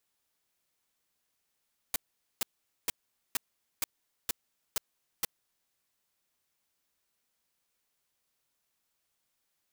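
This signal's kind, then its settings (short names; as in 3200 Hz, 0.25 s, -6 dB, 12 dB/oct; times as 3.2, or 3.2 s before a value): noise bursts white, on 0.02 s, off 0.45 s, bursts 8, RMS -29 dBFS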